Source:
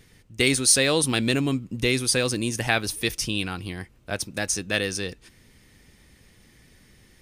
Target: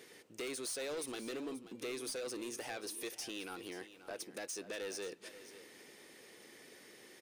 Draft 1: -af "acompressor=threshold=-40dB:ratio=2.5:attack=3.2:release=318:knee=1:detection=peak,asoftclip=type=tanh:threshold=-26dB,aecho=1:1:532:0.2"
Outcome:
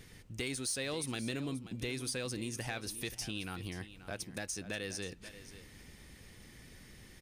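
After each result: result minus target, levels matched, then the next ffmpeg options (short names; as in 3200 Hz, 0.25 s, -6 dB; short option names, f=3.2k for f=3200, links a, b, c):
soft clip: distortion -14 dB; 500 Hz band -4.0 dB
-af "acompressor=threshold=-40dB:ratio=2.5:attack=3.2:release=318:knee=1:detection=peak,asoftclip=type=tanh:threshold=-37.5dB,aecho=1:1:532:0.2"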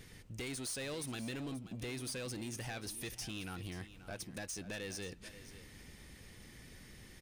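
500 Hz band -4.0 dB
-af "acompressor=threshold=-40dB:ratio=2.5:attack=3.2:release=318:knee=1:detection=peak,highpass=f=400:t=q:w=1.9,asoftclip=type=tanh:threshold=-37.5dB,aecho=1:1:532:0.2"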